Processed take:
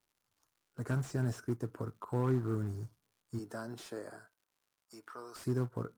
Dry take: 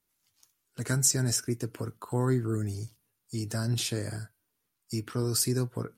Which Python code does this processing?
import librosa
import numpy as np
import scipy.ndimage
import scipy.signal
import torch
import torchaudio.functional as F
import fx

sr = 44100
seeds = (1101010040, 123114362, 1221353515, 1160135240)

y = fx.highpass(x, sr, hz=fx.line((3.38, 260.0), (5.44, 940.0)), slope=12, at=(3.38, 5.44), fade=0.02)
y = fx.quant_float(y, sr, bits=2)
y = fx.high_shelf_res(y, sr, hz=1800.0, db=-11.5, q=1.5)
y = fx.dmg_crackle(y, sr, seeds[0], per_s=160.0, level_db=-58.0)
y = fx.slew_limit(y, sr, full_power_hz=35.0)
y = y * librosa.db_to_amplitude(-4.5)